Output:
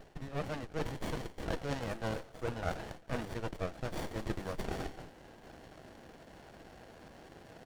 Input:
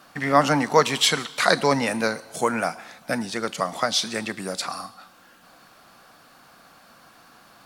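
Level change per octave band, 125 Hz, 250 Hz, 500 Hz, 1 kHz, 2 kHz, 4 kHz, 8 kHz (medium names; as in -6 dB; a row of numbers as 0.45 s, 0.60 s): -6.5 dB, -14.0 dB, -15.0 dB, -19.0 dB, -19.0 dB, -23.5 dB, -23.5 dB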